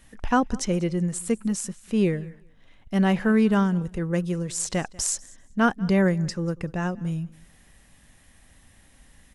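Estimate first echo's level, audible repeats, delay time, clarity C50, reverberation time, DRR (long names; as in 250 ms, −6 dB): −23.0 dB, 1, 192 ms, no reverb audible, no reverb audible, no reverb audible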